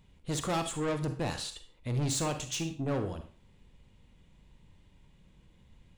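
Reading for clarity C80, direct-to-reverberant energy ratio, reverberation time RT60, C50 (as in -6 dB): 14.5 dB, 7.5 dB, 0.40 s, 10.0 dB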